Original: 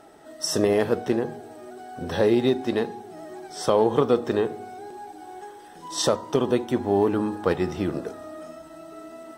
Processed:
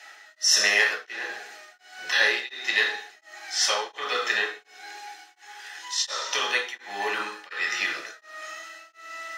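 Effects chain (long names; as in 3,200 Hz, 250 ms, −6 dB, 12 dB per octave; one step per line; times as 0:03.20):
high-pass with resonance 1,800 Hz, resonance Q 2.9
convolution reverb RT60 0.60 s, pre-delay 3 ms, DRR −1.5 dB
tremolo along a rectified sine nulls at 1.4 Hz
level +7.5 dB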